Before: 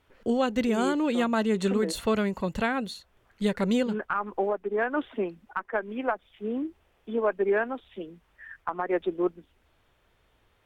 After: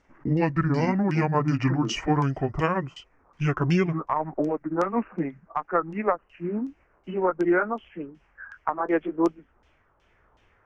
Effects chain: gliding pitch shift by -8 st ending unshifted; LFO low-pass saw down 2.7 Hz 970–3700 Hz; resonant high shelf 4800 Hz +7.5 dB, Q 3; gain +3 dB

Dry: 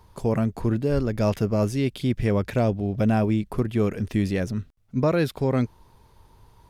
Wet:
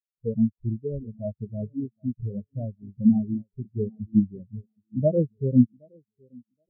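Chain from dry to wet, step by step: tape echo 0.772 s, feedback 56%, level -6.5 dB, low-pass 1200 Hz; vocal rider within 4 dB 2 s; spectral expander 4:1; gain +4 dB

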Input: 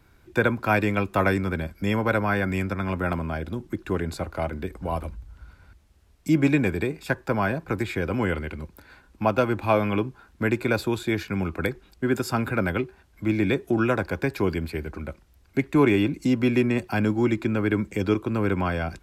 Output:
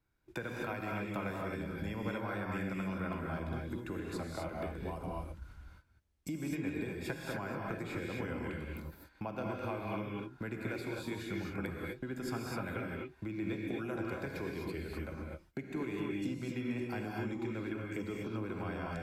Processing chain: gate -47 dBFS, range -18 dB; compressor 5:1, threshold -34 dBFS, peak gain reduction 18 dB; non-linear reverb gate 0.28 s rising, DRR -1.5 dB; gain -5.5 dB

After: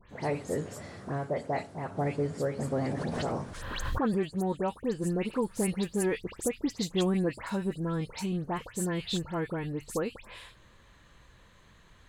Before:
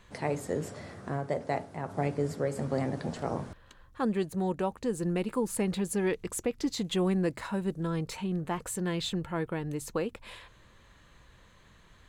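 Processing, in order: dispersion highs, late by 0.102 s, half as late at 2700 Hz; 2.91–4.33 backwards sustainer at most 31 dB/s

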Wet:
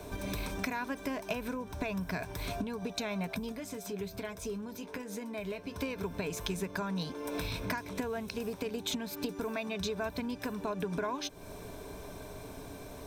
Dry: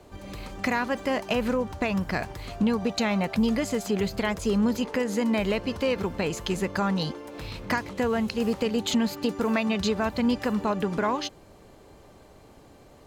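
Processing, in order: compressor 8:1, threshold -39 dBFS, peak gain reduction 18.5 dB; ripple EQ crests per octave 1.6, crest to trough 9 dB; 3.52–5.76 flange 1.2 Hz, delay 8.6 ms, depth 1.7 ms, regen -51%; high shelf 8300 Hz +9.5 dB; gain +5 dB

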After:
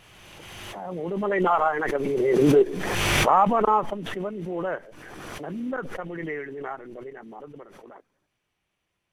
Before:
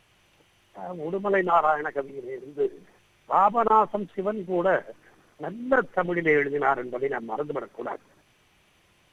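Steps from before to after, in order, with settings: Doppler pass-by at 2.63, 6 m/s, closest 2.3 m; backwards sustainer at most 23 dB/s; gain +7.5 dB

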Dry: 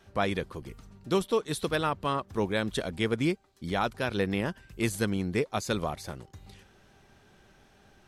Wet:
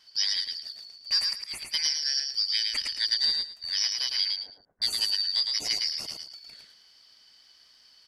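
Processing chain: four-band scrambler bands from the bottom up 4321; 1.08–1.74 auto swell 0.333 s; 4.32–4.82 Gaussian blur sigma 8.6 samples; on a send: feedback echo 0.109 s, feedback 21%, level -4 dB

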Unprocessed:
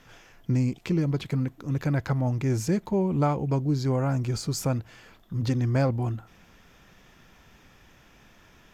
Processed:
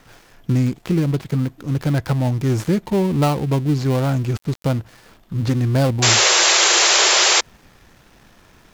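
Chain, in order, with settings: switching dead time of 0.18 ms; painted sound noise, 6.02–7.41, 330–7600 Hz -21 dBFS; gain +6.5 dB

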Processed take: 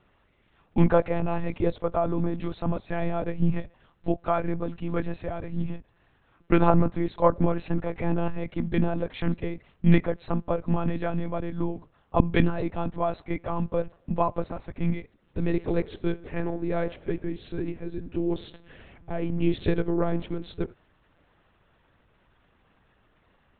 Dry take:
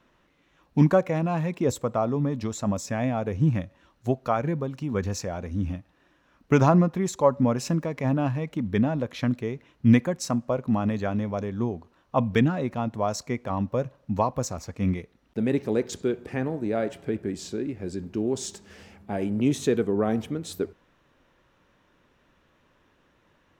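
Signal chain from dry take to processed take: monotone LPC vocoder at 8 kHz 170 Hz

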